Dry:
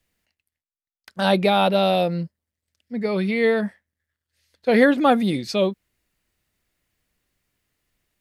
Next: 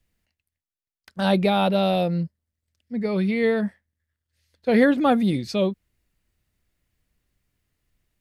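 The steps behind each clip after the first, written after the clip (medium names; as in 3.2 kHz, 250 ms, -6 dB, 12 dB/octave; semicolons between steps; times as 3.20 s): bass shelf 190 Hz +10.5 dB; trim -4 dB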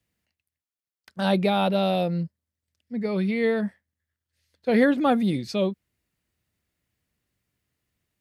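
high-pass 83 Hz; trim -2 dB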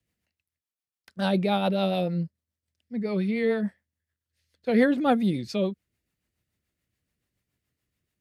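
rotary cabinet horn 7 Hz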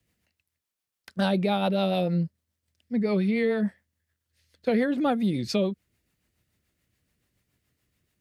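compression 6:1, threshold -28 dBFS, peak gain reduction 12 dB; trim +6.5 dB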